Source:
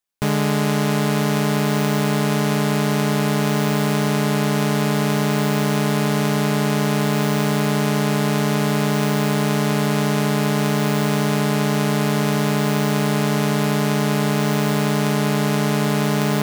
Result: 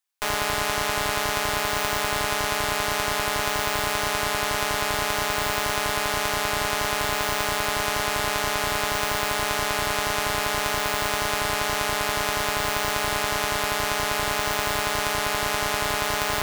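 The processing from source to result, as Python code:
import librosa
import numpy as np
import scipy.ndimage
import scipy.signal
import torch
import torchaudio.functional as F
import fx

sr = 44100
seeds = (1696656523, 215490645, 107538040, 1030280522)

p1 = scipy.signal.sosfilt(scipy.signal.butter(2, 790.0, 'highpass', fs=sr, output='sos'), x)
p2 = fx.schmitt(p1, sr, flips_db=-20.5)
p3 = p1 + F.gain(torch.from_numpy(p2), -6.0).numpy()
y = F.gain(torch.from_numpy(p3), 1.5).numpy()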